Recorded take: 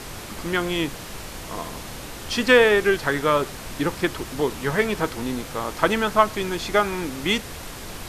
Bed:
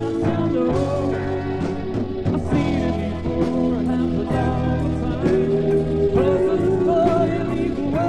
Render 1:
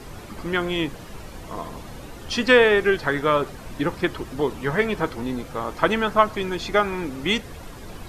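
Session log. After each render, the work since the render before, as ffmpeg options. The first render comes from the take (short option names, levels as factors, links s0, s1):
-af "afftdn=nr=10:nf=-37"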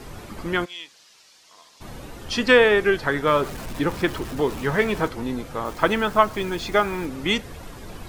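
-filter_complex "[0:a]asplit=3[s0][s1][s2];[s0]afade=t=out:st=0.64:d=0.02[s3];[s1]bandpass=f=5100:t=q:w=1.6,afade=t=in:st=0.64:d=0.02,afade=t=out:st=1.8:d=0.02[s4];[s2]afade=t=in:st=1.8:d=0.02[s5];[s3][s4][s5]amix=inputs=3:normalize=0,asettb=1/sr,asplit=3[s6][s7][s8];[s6]atrim=end=3.274[s9];[s7]atrim=start=3.27:end=5.08,asetpts=PTS-STARTPTS,afade=t=in:d=0.004:c=qsin,afade=t=out:st=1.806:d=0.004:c=qsin,aeval=exprs='val(0)+0.5*0.02*sgn(val(0))':c=same[s10];[s8]atrim=start=5.076[s11];[s9][s10]acrossfade=d=0.004:c1=hsin:c2=qsin[s12];[s12][s11]acrossfade=d=0.004:c1=qsin:c2=hsin,asettb=1/sr,asplit=3[s13][s14][s15];[s13]atrim=end=5.654[s16];[s14]atrim=start=5.65:end=7.06,asetpts=PTS-STARTPTS,afade=t=in:d=0.004:c=qsin,afade=t=out:st=1.406:d=0.004:c=qsin,acrusher=bits=8:dc=4:mix=0:aa=0.000001[s17];[s15]atrim=start=7.056[s18];[s16][s17]acrossfade=d=0.004:c1=hsin:c2=qsin[s19];[s19][s18]acrossfade=d=0.004:c1=qsin:c2=hsin"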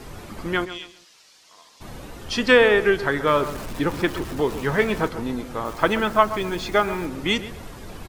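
-filter_complex "[0:a]asplit=2[s0][s1];[s1]adelay=131,lowpass=f=2000:p=1,volume=0.237,asplit=2[s2][s3];[s3]adelay=131,lowpass=f=2000:p=1,volume=0.32,asplit=2[s4][s5];[s5]adelay=131,lowpass=f=2000:p=1,volume=0.32[s6];[s0][s2][s4][s6]amix=inputs=4:normalize=0"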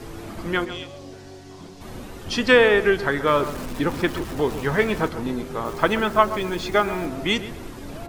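-filter_complex "[1:a]volume=0.119[s0];[0:a][s0]amix=inputs=2:normalize=0"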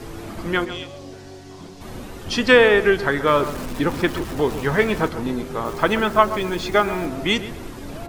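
-af "volume=1.26,alimiter=limit=0.891:level=0:latency=1"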